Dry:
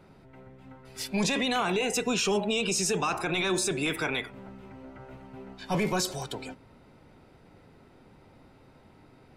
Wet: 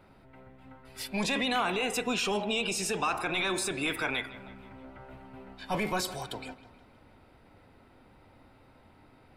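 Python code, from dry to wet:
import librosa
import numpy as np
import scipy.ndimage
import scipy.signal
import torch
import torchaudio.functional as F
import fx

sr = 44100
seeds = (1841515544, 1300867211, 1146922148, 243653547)

y = fx.graphic_eq_15(x, sr, hz=(160, 400, 6300), db=(-8, -5, -8))
y = fx.echo_wet_lowpass(y, sr, ms=158, feedback_pct=49, hz=3800.0, wet_db=-16.5)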